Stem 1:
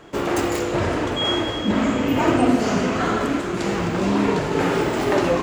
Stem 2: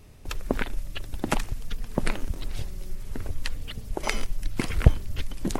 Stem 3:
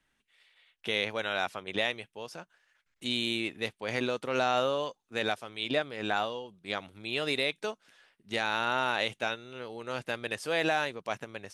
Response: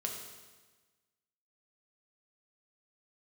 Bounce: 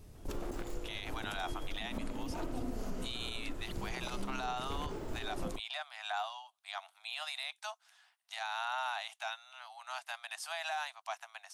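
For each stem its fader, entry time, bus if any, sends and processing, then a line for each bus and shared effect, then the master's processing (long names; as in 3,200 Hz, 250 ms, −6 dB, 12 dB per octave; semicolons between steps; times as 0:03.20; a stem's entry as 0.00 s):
−10.0 dB, 0.15 s, no send, automatic ducking −11 dB, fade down 0.55 s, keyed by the third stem
−3.5 dB, 0.00 s, no send, downward compressor, threshold −30 dBFS, peak gain reduction 20 dB
+1.0 dB, 0.00 s, no send, Butterworth high-pass 680 Hz 96 dB per octave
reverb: not used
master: parametric band 2,100 Hz −7 dB 1.7 octaves; brickwall limiter −28.5 dBFS, peak gain reduction 10.5 dB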